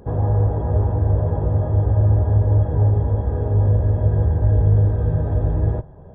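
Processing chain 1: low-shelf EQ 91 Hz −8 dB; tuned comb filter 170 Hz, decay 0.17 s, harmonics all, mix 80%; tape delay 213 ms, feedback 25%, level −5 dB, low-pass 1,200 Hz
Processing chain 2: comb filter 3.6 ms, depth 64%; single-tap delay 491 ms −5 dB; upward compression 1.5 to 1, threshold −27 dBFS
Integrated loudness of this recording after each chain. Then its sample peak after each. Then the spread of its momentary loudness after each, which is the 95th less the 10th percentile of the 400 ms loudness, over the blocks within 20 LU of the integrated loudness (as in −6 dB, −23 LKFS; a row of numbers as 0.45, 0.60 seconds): −31.5, −19.5 LKFS; −17.5, −4.5 dBFS; 5, 3 LU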